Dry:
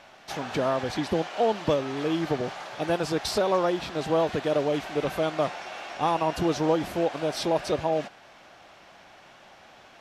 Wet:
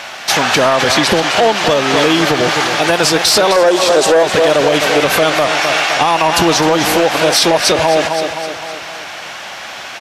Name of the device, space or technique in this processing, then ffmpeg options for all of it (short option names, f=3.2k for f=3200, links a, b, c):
mastering chain: -filter_complex "[0:a]asettb=1/sr,asplit=3[a][b][c];[a]atrim=end=3.564[d];[b]atrim=start=3.56:end=4.23,asetpts=PTS-STARTPTS,afade=t=in:d=0.004:c=qsin,afade=t=out:st=0.666:d=0.004:c=qsin,equalizer=f=125:t=o:w=1:g=-10,equalizer=f=500:t=o:w=1:g=12,equalizer=f=2k:t=o:w=1:g=-4,equalizer=f=8k:t=o:w=1:g=8[e];[c]atrim=start=4.226[f];[d][e]acrossfade=d=0.004:c1=hsin:c2=qsin[g];[g][f]acrossfade=d=0.004:c1=qsin:c2=hsin,highpass=57,equalizer=f=3.4k:t=o:w=0.77:g=-1.5,aecho=1:1:258|516|774|1032|1290:0.282|0.141|0.0705|0.0352|0.0176,acompressor=threshold=-26dB:ratio=2,asoftclip=type=tanh:threshold=-19dB,tiltshelf=f=940:g=-7,alimiter=level_in=22.5dB:limit=-1dB:release=50:level=0:latency=1,volume=-1dB"